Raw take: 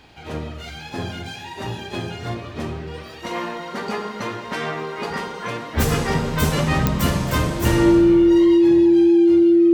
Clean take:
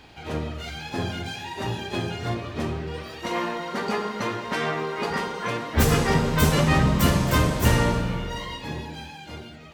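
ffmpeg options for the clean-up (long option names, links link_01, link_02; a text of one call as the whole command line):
ffmpeg -i in.wav -af "adeclick=threshold=4,bandreject=frequency=340:width=30" out.wav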